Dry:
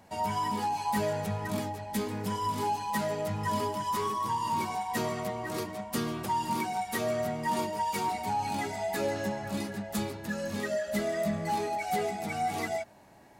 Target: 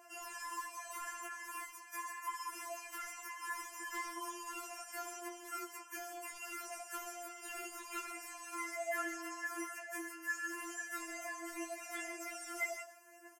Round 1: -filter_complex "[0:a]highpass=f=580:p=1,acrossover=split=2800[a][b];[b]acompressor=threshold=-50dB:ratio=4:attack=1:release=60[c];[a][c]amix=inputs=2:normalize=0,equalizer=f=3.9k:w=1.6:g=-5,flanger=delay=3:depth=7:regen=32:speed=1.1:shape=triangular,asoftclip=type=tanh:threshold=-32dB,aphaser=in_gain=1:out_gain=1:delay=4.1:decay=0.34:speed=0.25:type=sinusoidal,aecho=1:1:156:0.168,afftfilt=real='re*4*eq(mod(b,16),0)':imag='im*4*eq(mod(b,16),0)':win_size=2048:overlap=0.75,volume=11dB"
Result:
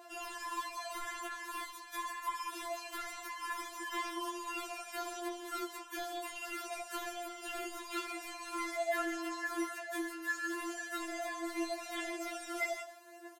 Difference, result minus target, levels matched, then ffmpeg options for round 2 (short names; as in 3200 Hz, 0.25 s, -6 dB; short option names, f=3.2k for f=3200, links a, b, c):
4000 Hz band +4.0 dB; 500 Hz band +3.0 dB
-filter_complex "[0:a]highpass=f=1.8k:p=1,acrossover=split=2800[a][b];[b]acompressor=threshold=-50dB:ratio=4:attack=1:release=60[c];[a][c]amix=inputs=2:normalize=0,asuperstop=centerf=3800:order=4:qfactor=1.7,equalizer=f=3.9k:w=1.6:g=-5,flanger=delay=3:depth=7:regen=32:speed=1.1:shape=triangular,asoftclip=type=tanh:threshold=-32dB,aphaser=in_gain=1:out_gain=1:delay=4.1:decay=0.34:speed=0.25:type=sinusoidal,aecho=1:1:156:0.168,afftfilt=real='re*4*eq(mod(b,16),0)':imag='im*4*eq(mod(b,16),0)':win_size=2048:overlap=0.75,volume=11dB"